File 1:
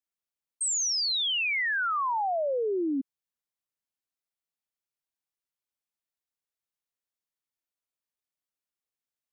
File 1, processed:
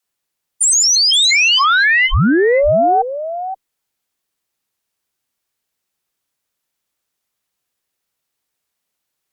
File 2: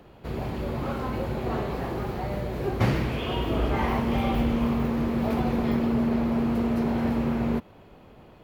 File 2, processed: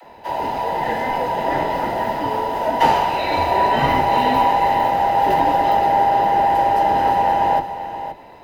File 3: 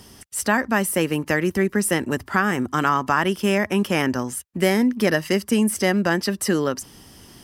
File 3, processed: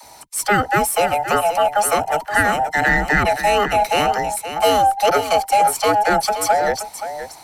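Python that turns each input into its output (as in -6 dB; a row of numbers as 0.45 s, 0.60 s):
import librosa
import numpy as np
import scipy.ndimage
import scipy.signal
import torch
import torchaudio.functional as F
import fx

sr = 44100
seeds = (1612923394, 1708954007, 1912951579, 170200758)

p1 = fx.band_invert(x, sr, width_hz=1000)
p2 = fx.dispersion(p1, sr, late='lows', ms=44.0, hz=340.0)
p3 = p2 + fx.echo_single(p2, sr, ms=524, db=-10.5, dry=0)
p4 = fx.cheby_harmonics(p3, sr, harmonics=(6,), levels_db=(-34,), full_scale_db=-6.0)
y = p4 * 10.0 ** (-18 / 20.0) / np.sqrt(np.mean(np.square(p4)))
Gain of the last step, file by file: +15.5 dB, +8.0 dB, +3.5 dB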